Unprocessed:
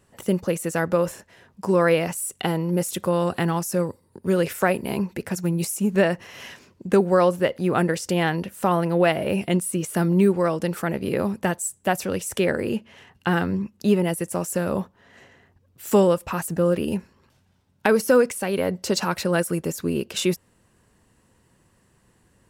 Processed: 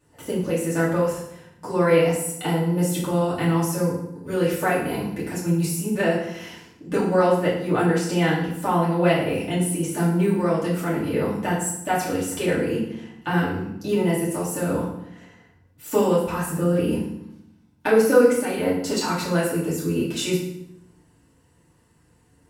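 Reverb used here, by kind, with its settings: FDN reverb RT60 0.76 s, low-frequency decay 1.5×, high-frequency decay 0.85×, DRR -8.5 dB; trim -9 dB

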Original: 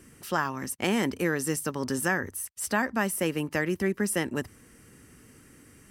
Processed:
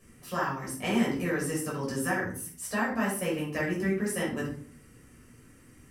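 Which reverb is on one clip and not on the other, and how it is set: simulated room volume 510 m³, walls furnished, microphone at 5.9 m; trim -11 dB

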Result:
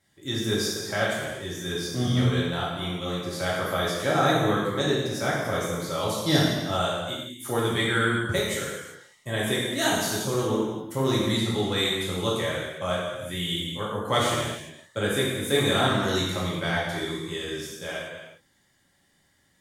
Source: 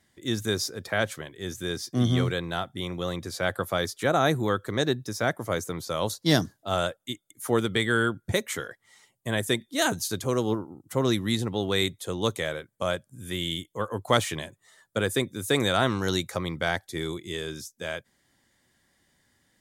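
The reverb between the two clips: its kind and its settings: gated-style reverb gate 430 ms falling, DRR -6.5 dB; trim -5.5 dB

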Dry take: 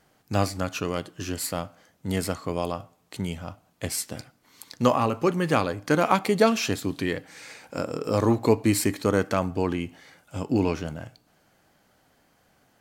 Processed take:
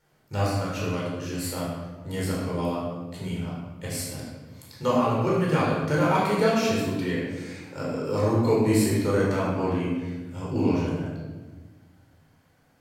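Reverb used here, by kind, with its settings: simulated room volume 1000 m³, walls mixed, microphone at 4.5 m; trim -10 dB

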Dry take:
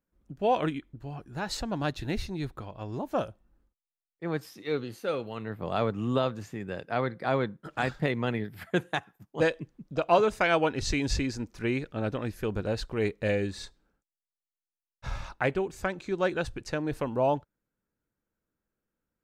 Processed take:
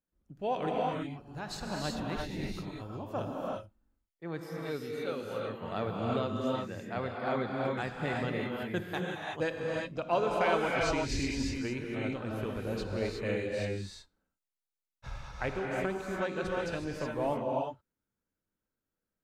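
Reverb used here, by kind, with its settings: gated-style reverb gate 390 ms rising, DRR -2 dB; trim -7.5 dB

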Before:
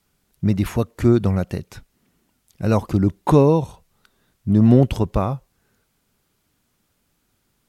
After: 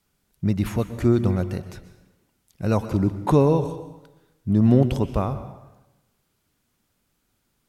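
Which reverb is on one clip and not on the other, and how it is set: plate-style reverb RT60 0.99 s, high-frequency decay 0.8×, pre-delay 110 ms, DRR 11.5 dB; trim -3.5 dB

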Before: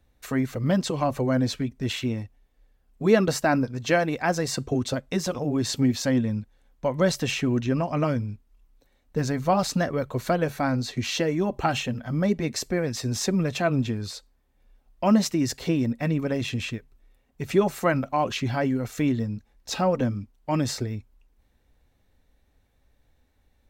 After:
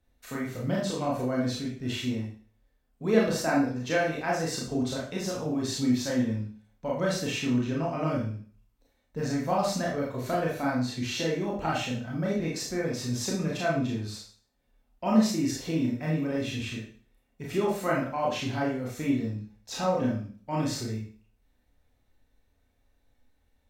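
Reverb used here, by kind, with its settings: Schroeder reverb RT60 0.45 s, combs from 25 ms, DRR -4 dB; trim -9 dB

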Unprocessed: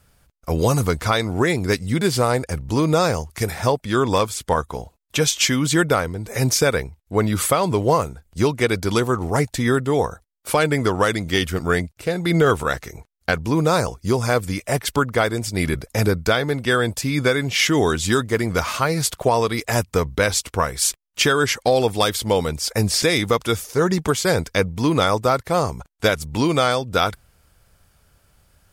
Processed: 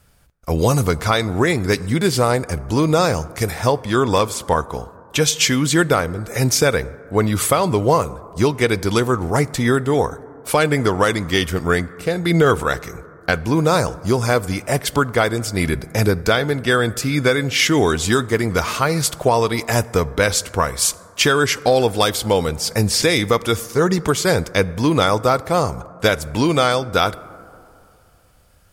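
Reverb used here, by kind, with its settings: plate-style reverb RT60 2.7 s, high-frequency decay 0.25×, DRR 18 dB; trim +2 dB

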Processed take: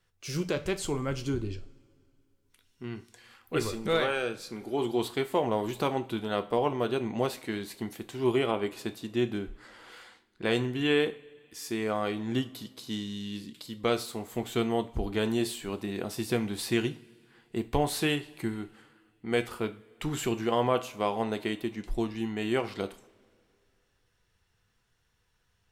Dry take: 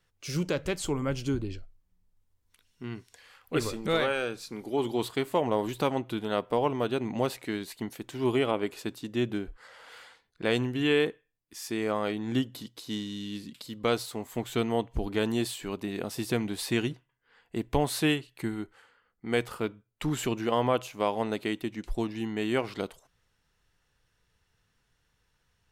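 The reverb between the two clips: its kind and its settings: two-slope reverb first 0.35 s, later 2.4 s, from -22 dB, DRR 9 dB; trim -1 dB

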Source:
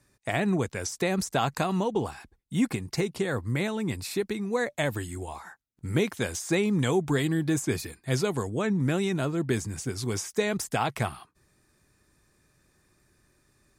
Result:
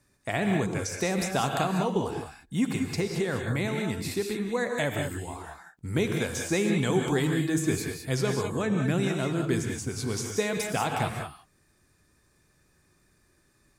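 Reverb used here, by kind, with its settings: gated-style reverb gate 220 ms rising, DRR 2.5 dB; trim -1.5 dB

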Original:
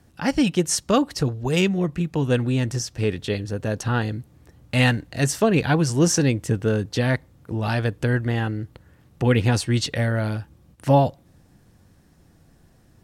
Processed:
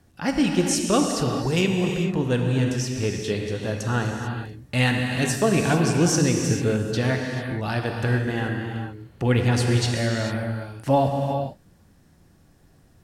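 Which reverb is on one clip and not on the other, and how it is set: gated-style reverb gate 470 ms flat, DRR 1.5 dB; trim -2.5 dB

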